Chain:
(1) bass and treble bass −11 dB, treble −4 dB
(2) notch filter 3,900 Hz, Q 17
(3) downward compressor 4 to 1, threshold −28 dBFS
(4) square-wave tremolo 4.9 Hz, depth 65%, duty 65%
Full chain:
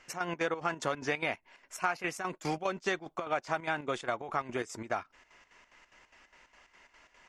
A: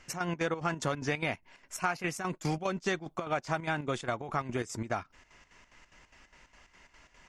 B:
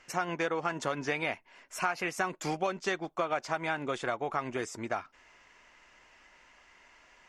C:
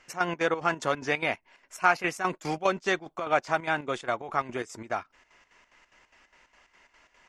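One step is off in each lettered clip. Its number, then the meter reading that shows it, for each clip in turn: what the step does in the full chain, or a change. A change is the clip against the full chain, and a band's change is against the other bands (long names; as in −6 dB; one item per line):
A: 1, 125 Hz band +8.0 dB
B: 4, change in integrated loudness +1.0 LU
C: 3, change in crest factor +2.0 dB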